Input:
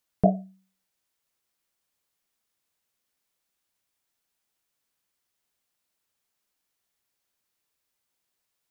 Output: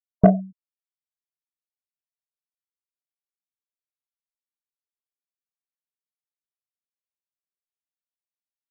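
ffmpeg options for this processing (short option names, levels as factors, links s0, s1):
-af "afftfilt=real='re*gte(hypot(re,im),0.0224)':imag='im*gte(hypot(re,im),0.0224)':win_size=1024:overlap=0.75,acontrast=78,equalizer=f=900:t=o:w=0.23:g=-13,volume=1.19"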